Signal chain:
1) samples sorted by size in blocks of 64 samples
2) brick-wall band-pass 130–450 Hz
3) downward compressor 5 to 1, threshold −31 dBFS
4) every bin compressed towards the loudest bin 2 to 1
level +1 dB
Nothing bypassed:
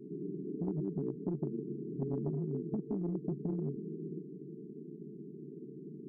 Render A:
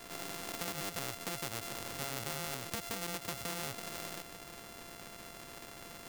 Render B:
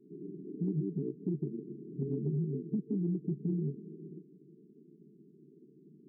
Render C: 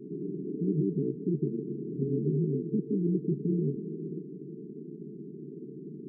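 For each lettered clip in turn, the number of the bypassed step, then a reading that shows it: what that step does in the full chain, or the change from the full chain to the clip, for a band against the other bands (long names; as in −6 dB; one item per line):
2, 1 kHz band +24.5 dB
4, change in momentary loudness spread +1 LU
3, average gain reduction 2.0 dB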